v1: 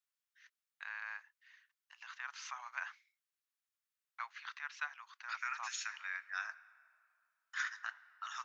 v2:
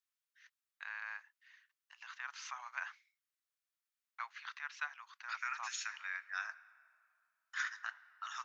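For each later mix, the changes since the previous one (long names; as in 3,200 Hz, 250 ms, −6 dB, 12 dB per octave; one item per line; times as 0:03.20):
nothing changed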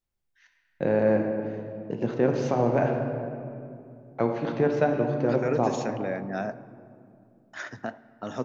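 first voice: send on
master: remove Butterworth high-pass 1,100 Hz 48 dB per octave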